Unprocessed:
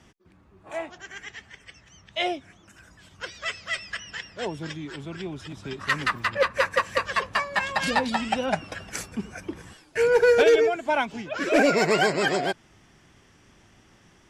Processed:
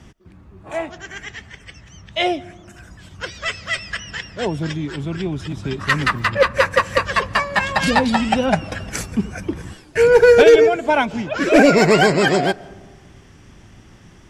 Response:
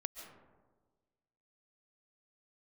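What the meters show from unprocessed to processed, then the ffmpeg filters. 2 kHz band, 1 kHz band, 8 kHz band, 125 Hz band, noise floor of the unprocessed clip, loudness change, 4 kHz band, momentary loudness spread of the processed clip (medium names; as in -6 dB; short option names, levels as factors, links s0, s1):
+6.5 dB, +7.0 dB, +6.0 dB, +13.0 dB, -57 dBFS, +7.5 dB, +6.5 dB, 18 LU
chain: -filter_complex "[0:a]lowshelf=f=230:g=9.5,asplit=2[s0][s1];[1:a]atrim=start_sample=2205[s2];[s1][s2]afir=irnorm=-1:irlink=0,volume=0.211[s3];[s0][s3]amix=inputs=2:normalize=0,volume=1.78"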